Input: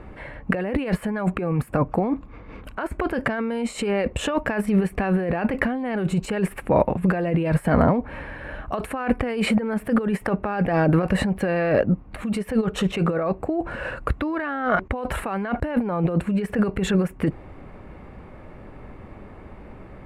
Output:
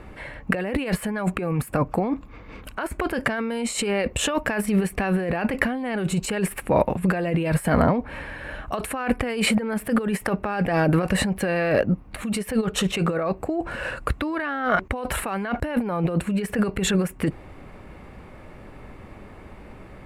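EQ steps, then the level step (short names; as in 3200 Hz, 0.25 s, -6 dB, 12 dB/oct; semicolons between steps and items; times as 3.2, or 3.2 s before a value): high shelf 3000 Hz +12 dB; -1.5 dB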